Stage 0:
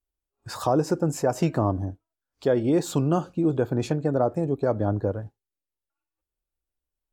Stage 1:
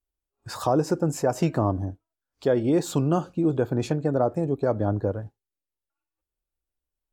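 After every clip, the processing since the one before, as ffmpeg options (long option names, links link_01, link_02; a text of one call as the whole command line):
ffmpeg -i in.wav -af anull out.wav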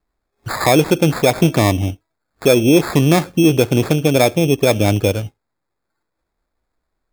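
ffmpeg -i in.wav -filter_complex "[0:a]asplit=2[link_01][link_02];[link_02]alimiter=limit=-18.5dB:level=0:latency=1:release=436,volume=2dB[link_03];[link_01][link_03]amix=inputs=2:normalize=0,acrusher=samples=15:mix=1:aa=0.000001,volume=5.5dB" out.wav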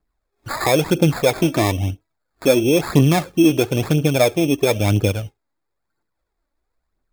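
ffmpeg -i in.wav -af "aphaser=in_gain=1:out_gain=1:delay=3.7:decay=0.47:speed=1:type=triangular,volume=-4dB" out.wav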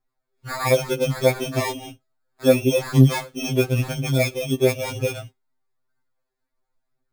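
ffmpeg -i in.wav -af "afftfilt=real='re*2.45*eq(mod(b,6),0)':imag='im*2.45*eq(mod(b,6),0)':win_size=2048:overlap=0.75,volume=-1.5dB" out.wav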